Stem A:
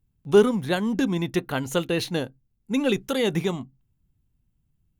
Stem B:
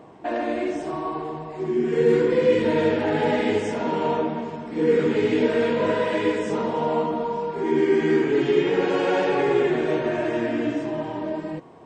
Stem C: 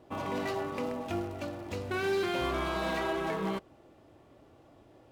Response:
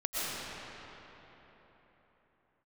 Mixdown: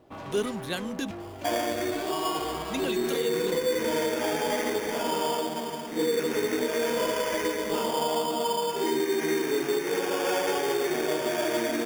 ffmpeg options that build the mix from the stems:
-filter_complex "[0:a]highshelf=frequency=2200:gain=12,acontrast=71,volume=-16.5dB,asplit=3[link_01][link_02][link_03];[link_01]atrim=end=1.11,asetpts=PTS-STARTPTS,afade=type=out:start_time=1.106:duration=0.004:curve=hsin[link_04];[link_02]atrim=start=1.11:end=2.64,asetpts=PTS-STARTPTS,volume=0[link_05];[link_03]atrim=start=2.64,asetpts=PTS-STARTPTS,afade=type=in:duration=0.004:curve=hsin[link_06];[link_04][link_05][link_06]concat=n=3:v=0:a=1[link_07];[1:a]highpass=frequency=490:poles=1,acrusher=samples=11:mix=1:aa=0.000001,adelay=1200,volume=2dB[link_08];[2:a]asoftclip=type=tanh:threshold=-36dB,volume=0dB[link_09];[link_07][link_08][link_09]amix=inputs=3:normalize=0,alimiter=limit=-18.5dB:level=0:latency=1:release=309"

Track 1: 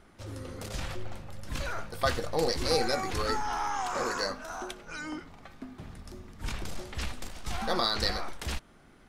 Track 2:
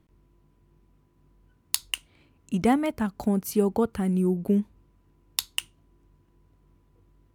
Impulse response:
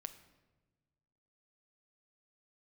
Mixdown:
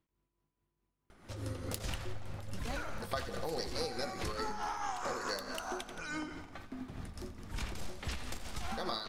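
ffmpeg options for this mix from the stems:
-filter_complex "[0:a]adelay=1100,volume=1.5dB,asplit=2[link_01][link_02];[link_02]volume=-10.5dB[link_03];[1:a]lowshelf=frequency=430:gain=-9.5,volume=-11.5dB[link_04];[link_03]aecho=0:1:86|172|258|344|430|516|602|688:1|0.54|0.292|0.157|0.085|0.0459|0.0248|0.0134[link_05];[link_01][link_04][link_05]amix=inputs=3:normalize=0,tremolo=f=4.7:d=0.5,acompressor=threshold=-34dB:ratio=6"

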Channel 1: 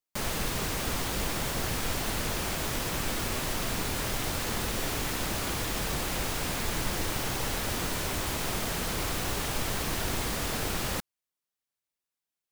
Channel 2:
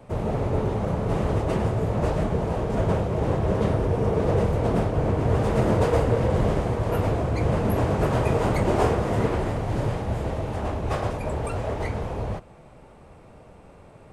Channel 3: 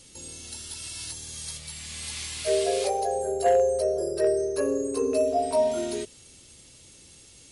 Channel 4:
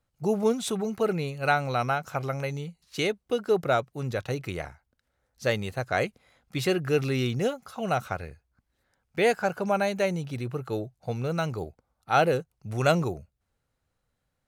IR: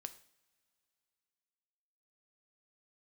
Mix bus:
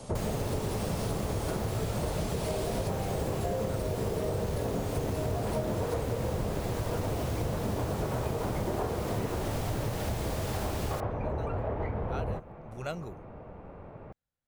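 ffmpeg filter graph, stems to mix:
-filter_complex "[0:a]volume=-1dB[link_01];[1:a]lowpass=1700,volume=2.5dB[link_02];[2:a]volume=-2dB[link_03];[3:a]volume=-13.5dB[link_04];[link_01][link_02][link_03][link_04]amix=inputs=4:normalize=0,acompressor=threshold=-29dB:ratio=6"

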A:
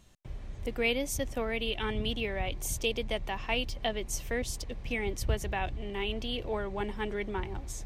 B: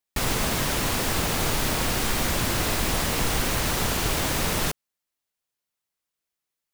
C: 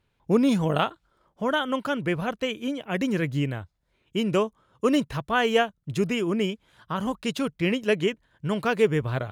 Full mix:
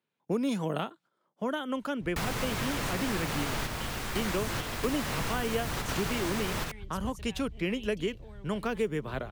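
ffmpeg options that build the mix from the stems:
ffmpeg -i stem1.wav -i stem2.wav -i stem3.wav -filter_complex "[0:a]acrossover=split=180|3000[link_01][link_02][link_03];[link_02]acompressor=threshold=-46dB:ratio=6[link_04];[link_01][link_04][link_03]amix=inputs=3:normalize=0,adelay=1750,volume=-7dB[link_05];[1:a]equalizer=frequency=1400:width=0.59:gain=5,adelay=2000,volume=-6.5dB[link_06];[2:a]highpass=frequency=180:width=0.5412,highpass=frequency=180:width=1.3066,agate=range=-7dB:threshold=-51dB:ratio=16:detection=peak,volume=-3.5dB,asplit=2[link_07][link_08];[link_08]apad=whole_len=385260[link_09];[link_06][link_09]sidechaingate=range=-6dB:threshold=-46dB:ratio=16:detection=peak[link_10];[link_05][link_10][link_07]amix=inputs=3:normalize=0,equalizer=frequency=130:width=1.5:gain=4,acrossover=split=370|7000[link_11][link_12][link_13];[link_11]acompressor=threshold=-31dB:ratio=4[link_14];[link_12]acompressor=threshold=-32dB:ratio=4[link_15];[link_13]acompressor=threshold=-44dB:ratio=4[link_16];[link_14][link_15][link_16]amix=inputs=3:normalize=0" out.wav

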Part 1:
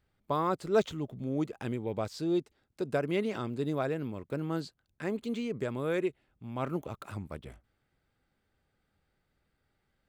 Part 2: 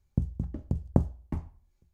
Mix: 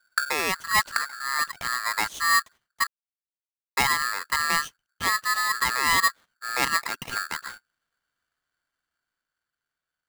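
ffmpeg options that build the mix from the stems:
ffmpeg -i stem1.wav -i stem2.wav -filter_complex "[0:a]agate=range=-14dB:threshold=-50dB:ratio=16:detection=peak,volume=3dB,asplit=3[link_01][link_02][link_03];[link_01]atrim=end=2.87,asetpts=PTS-STARTPTS,afade=type=out:start_time=2.866:duration=0.004:curve=hsin[link_04];[link_02]atrim=start=2.87:end=3.77,asetpts=PTS-STARTPTS,volume=0[link_05];[link_03]atrim=start=3.77,asetpts=PTS-STARTPTS,afade=type=in:duration=0.004:curve=hsin[link_06];[link_04][link_05][link_06]concat=n=3:v=0:a=1,asplit=2[link_07][link_08];[1:a]volume=1dB[link_09];[link_08]apad=whole_len=85213[link_10];[link_09][link_10]sidechaincompress=threshold=-38dB:ratio=8:attack=8.1:release=109[link_11];[link_07][link_11]amix=inputs=2:normalize=0,dynaudnorm=framelen=330:gausssize=11:maxgain=6dB,asuperstop=centerf=3600:order=4:qfactor=2.9,aeval=exprs='val(0)*sgn(sin(2*PI*1500*n/s))':channel_layout=same" out.wav

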